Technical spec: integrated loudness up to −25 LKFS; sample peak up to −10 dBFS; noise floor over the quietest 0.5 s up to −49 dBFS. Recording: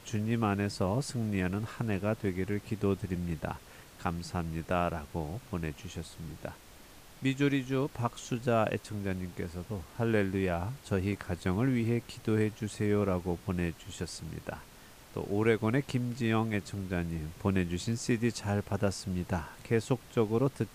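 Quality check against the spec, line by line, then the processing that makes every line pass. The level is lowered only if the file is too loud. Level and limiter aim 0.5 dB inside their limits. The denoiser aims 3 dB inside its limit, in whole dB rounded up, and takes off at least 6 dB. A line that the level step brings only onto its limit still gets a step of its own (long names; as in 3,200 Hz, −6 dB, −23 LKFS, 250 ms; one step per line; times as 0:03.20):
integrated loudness −33.0 LKFS: in spec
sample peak −14.5 dBFS: in spec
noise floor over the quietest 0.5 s −53 dBFS: in spec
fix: no processing needed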